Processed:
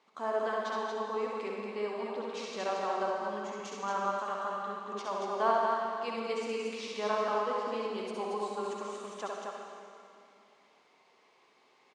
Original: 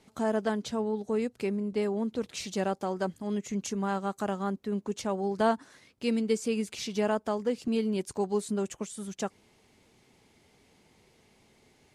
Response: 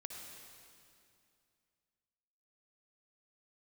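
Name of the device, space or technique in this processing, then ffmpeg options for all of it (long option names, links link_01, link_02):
station announcement: -filter_complex "[0:a]highpass=460,lowpass=4600,equalizer=frequency=1100:width_type=o:width=0.4:gain=11,aecho=1:1:67.06|230.3:0.631|0.631[link_01];[1:a]atrim=start_sample=2205[link_02];[link_01][link_02]afir=irnorm=-1:irlink=0,asettb=1/sr,asplit=3[link_03][link_04][link_05];[link_03]atrim=end=4.194[link_06];[link_04]atrim=start=4.19:end=4.92,asetpts=PTS-STARTPTS,afade=type=in:duration=0.004:curve=qsin,afade=type=out:start_time=0.726:duration=0.004:curve=qsin,equalizer=frequency=450:width_type=o:width=2.5:gain=-5[link_07];[link_05]atrim=start=4.916[link_08];[link_06][link_07]acrossfade=duration=0.004:curve1=hsin:curve2=qsin[link_09];[link_09][link_08]acrossfade=duration=0.004:curve1=qsin:curve2=hsin"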